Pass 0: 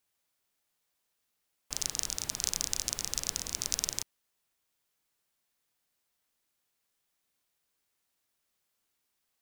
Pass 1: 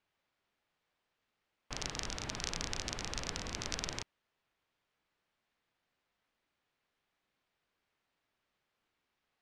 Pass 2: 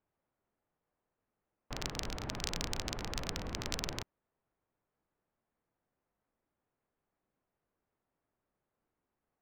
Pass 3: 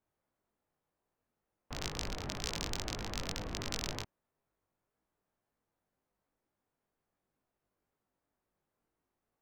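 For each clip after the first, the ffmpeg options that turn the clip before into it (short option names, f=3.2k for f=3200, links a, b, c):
-af "lowpass=2.9k,volume=4dB"
-af "adynamicsmooth=sensitivity=3:basefreq=1.1k,volume=3dB"
-af "flanger=delay=19:depth=2.2:speed=2,volume=3dB"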